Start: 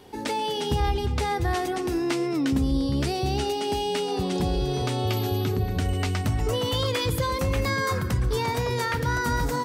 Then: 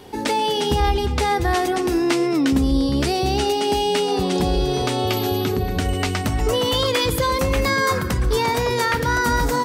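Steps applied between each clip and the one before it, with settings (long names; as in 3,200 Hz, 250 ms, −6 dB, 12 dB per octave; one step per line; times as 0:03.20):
dynamic equaliser 110 Hz, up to −8 dB, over −41 dBFS, Q 1.3
level +7 dB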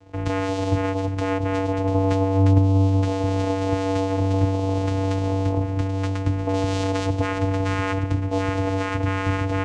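dead-zone distortion −47 dBFS
channel vocoder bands 4, square 96.1 Hz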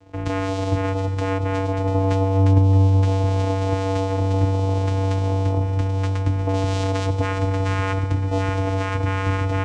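echo with a time of its own for lows and highs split 380 Hz, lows 198 ms, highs 621 ms, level −15 dB
on a send at −16.5 dB: convolution reverb RT60 1.3 s, pre-delay 3 ms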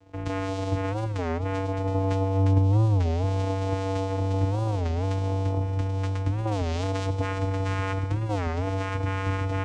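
wow of a warped record 33 1/3 rpm, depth 250 cents
level −5.5 dB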